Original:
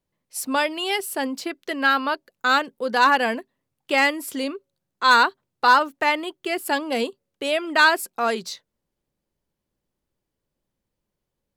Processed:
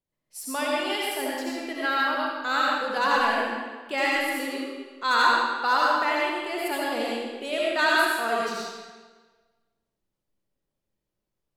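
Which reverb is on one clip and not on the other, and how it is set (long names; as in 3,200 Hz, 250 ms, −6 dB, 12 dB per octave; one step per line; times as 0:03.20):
comb and all-pass reverb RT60 1.4 s, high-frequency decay 0.9×, pre-delay 40 ms, DRR −5 dB
level −9 dB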